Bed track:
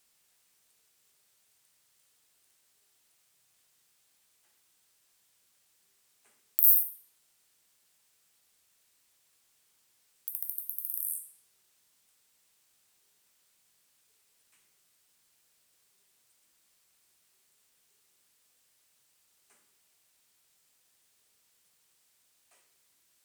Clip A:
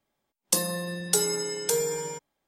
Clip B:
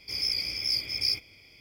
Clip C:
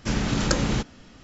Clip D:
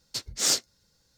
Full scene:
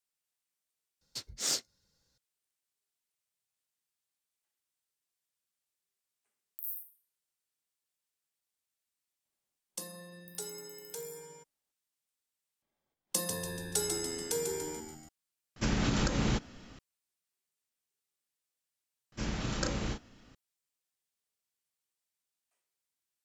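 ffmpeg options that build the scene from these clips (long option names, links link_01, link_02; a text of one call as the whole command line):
ffmpeg -i bed.wav -i cue0.wav -i cue1.wav -i cue2.wav -i cue3.wav -filter_complex "[1:a]asplit=2[link_01][link_02];[3:a]asplit=2[link_03][link_04];[0:a]volume=-19dB[link_05];[link_02]asplit=7[link_06][link_07][link_08][link_09][link_10][link_11][link_12];[link_07]adelay=144,afreqshift=-80,volume=-6dB[link_13];[link_08]adelay=288,afreqshift=-160,volume=-12.2dB[link_14];[link_09]adelay=432,afreqshift=-240,volume=-18.4dB[link_15];[link_10]adelay=576,afreqshift=-320,volume=-24.6dB[link_16];[link_11]adelay=720,afreqshift=-400,volume=-30.8dB[link_17];[link_12]adelay=864,afreqshift=-480,volume=-37dB[link_18];[link_06][link_13][link_14][link_15][link_16][link_17][link_18]amix=inputs=7:normalize=0[link_19];[link_03]alimiter=limit=-16.5dB:level=0:latency=1:release=143[link_20];[link_04]asplit=2[link_21][link_22];[link_22]adelay=34,volume=-5dB[link_23];[link_21][link_23]amix=inputs=2:normalize=0[link_24];[link_05]asplit=3[link_25][link_26][link_27];[link_25]atrim=end=1.014[link_28];[4:a]atrim=end=1.17,asetpts=PTS-STARTPTS,volume=-8dB[link_29];[link_26]atrim=start=2.176:end=12.624[link_30];[link_19]atrim=end=2.47,asetpts=PTS-STARTPTS,volume=-8.5dB[link_31];[link_27]atrim=start=15.086[link_32];[link_01]atrim=end=2.47,asetpts=PTS-STARTPTS,volume=-17.5dB,afade=type=in:duration=0.004:curve=hsin,afade=type=out:start_time=2.466:duration=0.004:curve=hsin,adelay=9250[link_33];[link_20]atrim=end=1.23,asetpts=PTS-STARTPTS,volume=-3dB,afade=type=in:duration=0.004:curve=hsin,afade=type=out:start_time=1.226:duration=0.004:curve=hsin,adelay=686196S[link_34];[link_24]atrim=end=1.23,asetpts=PTS-STARTPTS,volume=-11dB,afade=type=in:duration=0.004:curve=hsin,afade=type=out:start_time=1.226:duration=0.004:curve=hsin,adelay=19120[link_35];[link_28][link_29]acrossfade=duration=0.004:curve1=hsin:curve2=hsin[link_36];[link_36][link_30]acrossfade=duration=0.004:curve1=hsin:curve2=hsin[link_37];[link_37][link_31]acrossfade=duration=0.004:curve1=hsin:curve2=hsin[link_38];[link_38][link_32]acrossfade=duration=0.004:curve1=hsin:curve2=hsin[link_39];[link_39][link_33][link_34][link_35]amix=inputs=4:normalize=0" out.wav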